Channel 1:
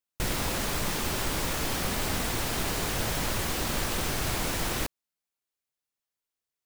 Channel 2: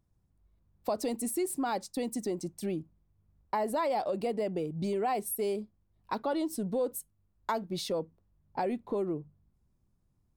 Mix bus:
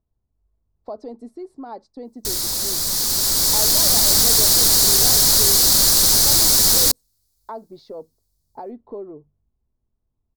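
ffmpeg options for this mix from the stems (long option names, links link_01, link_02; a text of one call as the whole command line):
ffmpeg -i stem1.wav -i stem2.wav -filter_complex "[0:a]aemphasis=mode=production:type=cd,dynaudnorm=framelen=380:gausssize=7:maxgain=10dB,adelay=2050,volume=-5dB[link_01];[1:a]lowpass=1100,equalizer=frequency=180:width=2.9:gain=-13.5,aecho=1:1:4.6:0.32,volume=-1dB[link_02];[link_01][link_02]amix=inputs=2:normalize=0,highshelf=frequency=3500:width_type=q:width=3:gain=8" out.wav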